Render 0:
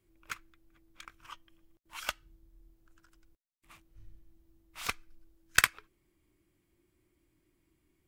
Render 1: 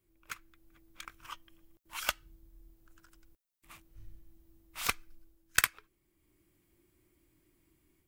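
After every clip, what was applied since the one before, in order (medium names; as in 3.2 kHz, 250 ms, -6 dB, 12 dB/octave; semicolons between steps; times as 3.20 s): treble shelf 11 kHz +9 dB; level rider gain up to 6.5 dB; trim -4 dB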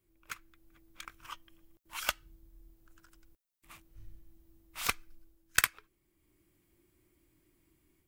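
no audible change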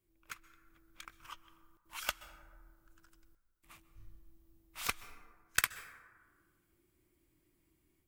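plate-style reverb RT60 1.6 s, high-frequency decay 0.35×, pre-delay 115 ms, DRR 15 dB; trim -4 dB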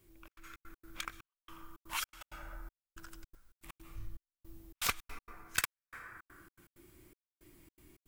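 compression 1.5:1, threshold -57 dBFS, peak gain reduction 12 dB; saturation -34 dBFS, distortion -9 dB; trance gate "xxx.xx.x.xxxx..." 162 bpm -60 dB; trim +14 dB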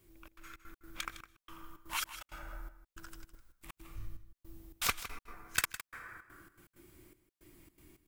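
delay 159 ms -13 dB; trim +1 dB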